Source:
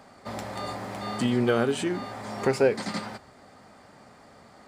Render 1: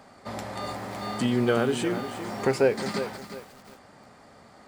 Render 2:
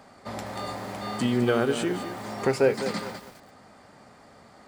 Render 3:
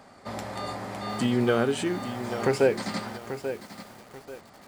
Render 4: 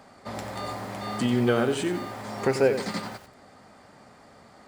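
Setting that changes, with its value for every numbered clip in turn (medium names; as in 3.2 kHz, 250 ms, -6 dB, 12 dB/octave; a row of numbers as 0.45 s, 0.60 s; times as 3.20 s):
bit-crushed delay, time: 356 ms, 205 ms, 837 ms, 91 ms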